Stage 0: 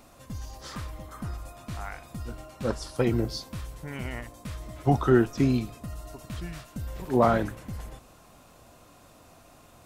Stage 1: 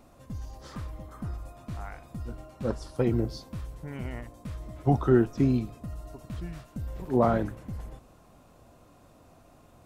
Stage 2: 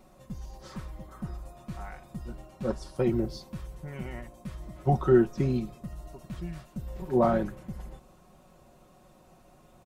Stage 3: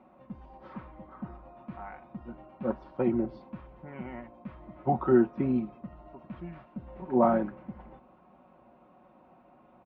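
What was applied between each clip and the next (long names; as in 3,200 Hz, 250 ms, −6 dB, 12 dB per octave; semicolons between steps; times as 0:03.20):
tilt shelving filter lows +4.5 dB, about 1,100 Hz; level −4.5 dB
comb filter 5.4 ms; level −2 dB
loudspeaker in its box 100–2,400 Hz, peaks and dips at 100 Hz −10 dB, 150 Hz −8 dB, 260 Hz +5 dB, 410 Hz −4 dB, 880 Hz +5 dB, 1,800 Hz −4 dB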